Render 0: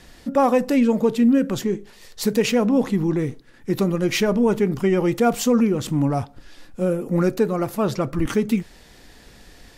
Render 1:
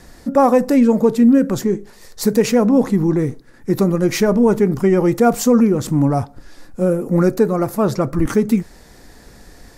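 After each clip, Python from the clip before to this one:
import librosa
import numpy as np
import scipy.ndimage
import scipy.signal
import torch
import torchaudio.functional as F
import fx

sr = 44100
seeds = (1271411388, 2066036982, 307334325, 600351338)

y = fx.peak_eq(x, sr, hz=3000.0, db=-10.5, octaves=0.88)
y = y * 10.0 ** (5.0 / 20.0)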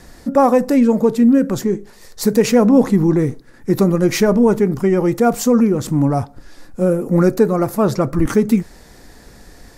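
y = fx.rider(x, sr, range_db=10, speed_s=2.0)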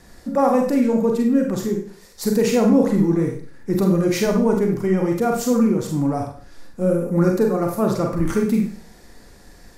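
y = fx.rev_schroeder(x, sr, rt60_s=0.46, comb_ms=32, drr_db=1.5)
y = y * 10.0 ** (-6.5 / 20.0)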